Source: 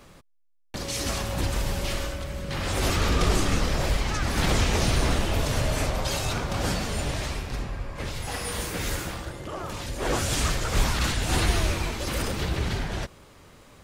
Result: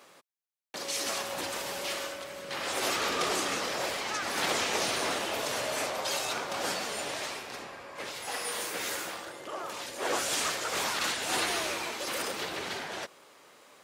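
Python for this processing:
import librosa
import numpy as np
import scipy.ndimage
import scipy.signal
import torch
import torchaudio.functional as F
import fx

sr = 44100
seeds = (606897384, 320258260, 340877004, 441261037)

y = scipy.signal.sosfilt(scipy.signal.butter(2, 430.0, 'highpass', fs=sr, output='sos'), x)
y = y * 10.0 ** (-1.5 / 20.0)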